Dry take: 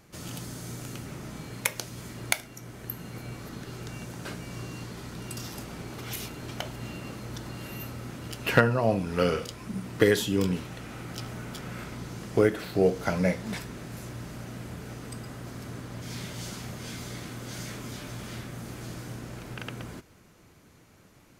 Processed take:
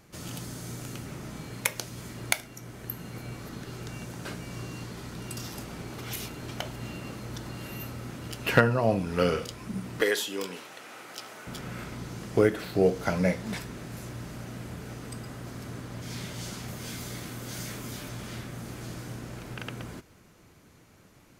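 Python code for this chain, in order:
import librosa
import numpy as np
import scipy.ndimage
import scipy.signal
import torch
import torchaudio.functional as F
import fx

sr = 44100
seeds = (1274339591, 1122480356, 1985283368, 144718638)

y = fx.highpass(x, sr, hz=510.0, slope=12, at=(10.01, 11.47))
y = fx.high_shelf(y, sr, hz=12000.0, db=11.0, at=(16.68, 18.09))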